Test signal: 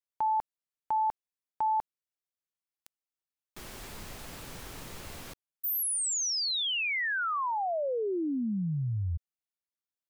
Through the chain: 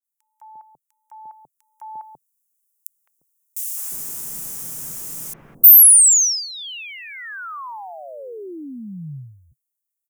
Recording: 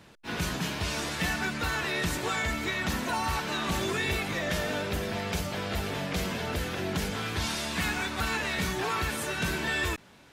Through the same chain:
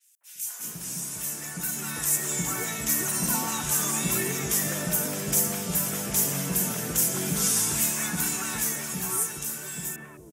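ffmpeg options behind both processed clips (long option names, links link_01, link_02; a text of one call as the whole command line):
ffmpeg -i in.wav -filter_complex "[0:a]lowshelf=frequency=110:width_type=q:width=3:gain=-7.5,acrossover=split=670|2200[link_01][link_02][link_03];[link_02]adelay=210[link_04];[link_01]adelay=350[link_05];[link_05][link_04][link_03]amix=inputs=3:normalize=0,dynaudnorm=framelen=200:gausssize=21:maxgain=13.5dB,aexciter=amount=14.7:drive=4.6:freq=6200,adynamicequalizer=threshold=0.0794:dfrequency=7000:dqfactor=0.7:tfrequency=7000:tqfactor=0.7:attack=5:release=100:ratio=0.375:range=3:mode=cutabove:tftype=highshelf,volume=-13dB" out.wav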